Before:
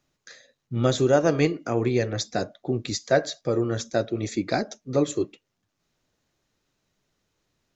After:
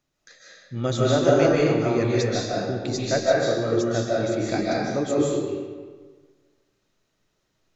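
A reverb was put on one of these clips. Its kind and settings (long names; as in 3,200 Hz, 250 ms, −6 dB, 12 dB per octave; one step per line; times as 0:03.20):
comb and all-pass reverb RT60 1.5 s, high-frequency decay 0.75×, pre-delay 110 ms, DRR −5.5 dB
level −4 dB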